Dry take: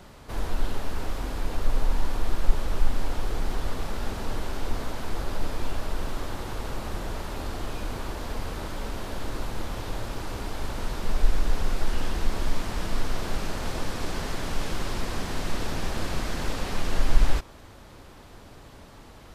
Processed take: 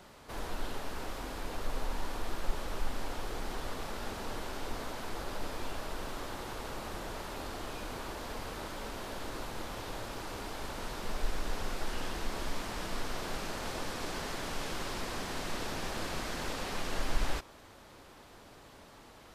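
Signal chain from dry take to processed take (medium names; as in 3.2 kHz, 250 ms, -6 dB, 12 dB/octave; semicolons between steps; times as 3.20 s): bass shelf 180 Hz -10 dB; trim -3.5 dB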